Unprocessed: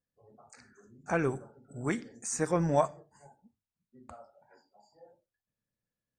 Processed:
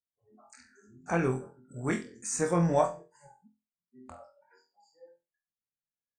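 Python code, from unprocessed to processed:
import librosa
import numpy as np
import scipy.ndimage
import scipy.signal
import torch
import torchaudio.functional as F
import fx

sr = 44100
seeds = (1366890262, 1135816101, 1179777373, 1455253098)

y = fx.noise_reduce_blind(x, sr, reduce_db=19)
y = fx.room_flutter(y, sr, wall_m=4.0, rt60_s=0.27)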